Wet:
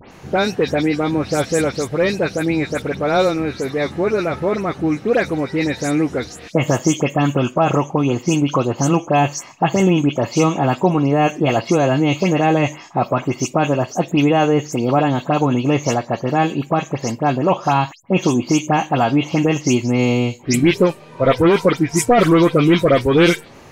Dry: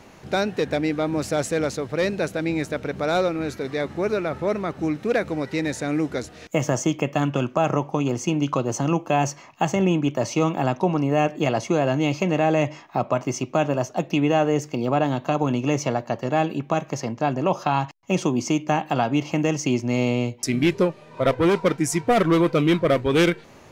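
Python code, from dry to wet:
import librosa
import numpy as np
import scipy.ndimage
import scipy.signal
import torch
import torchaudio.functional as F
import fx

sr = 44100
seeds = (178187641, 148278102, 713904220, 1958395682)

y = fx.spec_delay(x, sr, highs='late', ms=113)
y = y * librosa.db_to_amplitude(6.0)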